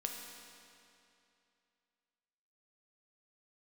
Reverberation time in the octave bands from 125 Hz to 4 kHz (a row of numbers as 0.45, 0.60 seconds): 2.7, 2.7, 2.7, 2.7, 2.6, 2.4 seconds